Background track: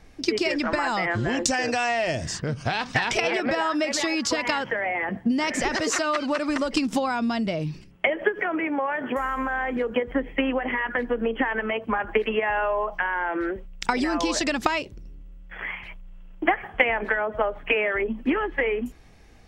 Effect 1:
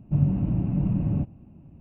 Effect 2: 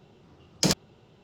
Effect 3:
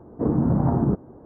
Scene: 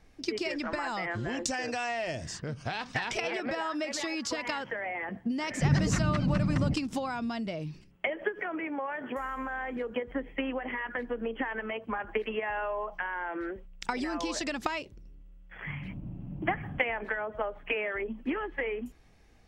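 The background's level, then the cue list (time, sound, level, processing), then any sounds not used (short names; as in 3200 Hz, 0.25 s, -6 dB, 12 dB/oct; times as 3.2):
background track -8.5 dB
5.5 add 1 -3.5 dB
15.55 add 1 -15 dB + limiter -17.5 dBFS
not used: 2, 3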